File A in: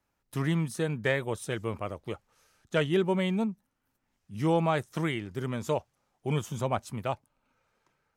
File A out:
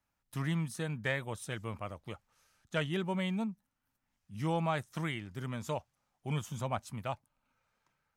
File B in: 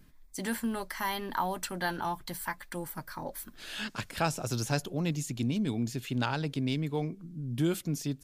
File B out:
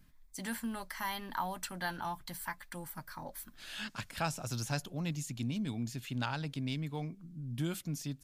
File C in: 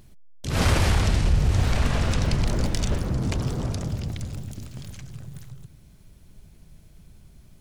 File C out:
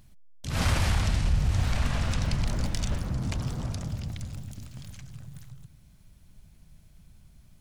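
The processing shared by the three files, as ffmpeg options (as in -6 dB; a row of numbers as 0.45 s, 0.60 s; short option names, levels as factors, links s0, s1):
-af "equalizer=f=400:w=1.6:g=-8,volume=0.631"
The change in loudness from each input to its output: -6.0 LU, -5.5 LU, -4.5 LU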